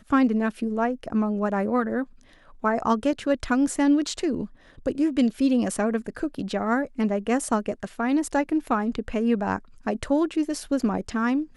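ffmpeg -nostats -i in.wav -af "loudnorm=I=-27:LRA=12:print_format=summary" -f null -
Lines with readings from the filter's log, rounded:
Input Integrated:    -25.3 LUFS
Input True Peak:      -9.5 dBTP
Input LRA:             1.3 LU
Input Threshold:     -35.4 LUFS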